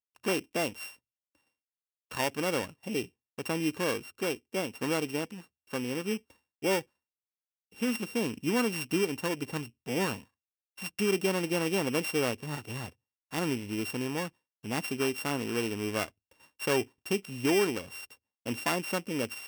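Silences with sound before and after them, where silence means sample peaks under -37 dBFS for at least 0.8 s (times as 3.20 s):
0.89–2.11 s
6.81–7.80 s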